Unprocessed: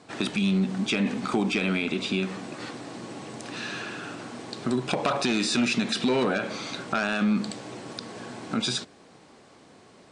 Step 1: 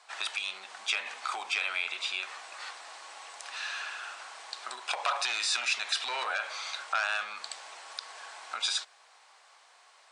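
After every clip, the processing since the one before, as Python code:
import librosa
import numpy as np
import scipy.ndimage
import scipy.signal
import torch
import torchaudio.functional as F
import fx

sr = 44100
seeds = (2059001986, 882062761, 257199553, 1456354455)

y = scipy.signal.sosfilt(scipy.signal.butter(4, 810.0, 'highpass', fs=sr, output='sos'), x)
y = y * 10.0 ** (-1.0 / 20.0)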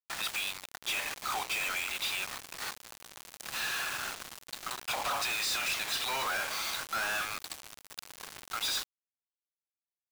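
y = fx.quant_companded(x, sr, bits=2)
y = y * 10.0 ** (-5.5 / 20.0)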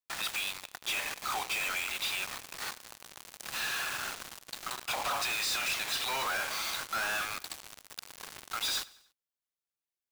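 y = fx.echo_feedback(x, sr, ms=96, feedback_pct=49, wet_db=-21.5)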